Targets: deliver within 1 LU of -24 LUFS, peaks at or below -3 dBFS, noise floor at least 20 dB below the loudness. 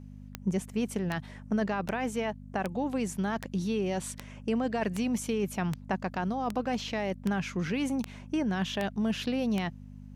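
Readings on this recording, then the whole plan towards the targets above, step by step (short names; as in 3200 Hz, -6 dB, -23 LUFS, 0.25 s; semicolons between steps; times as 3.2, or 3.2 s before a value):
clicks 13; hum 50 Hz; harmonics up to 250 Hz; hum level -43 dBFS; loudness -32.0 LUFS; peak -14.5 dBFS; loudness target -24.0 LUFS
-> de-click; de-hum 50 Hz, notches 5; gain +8 dB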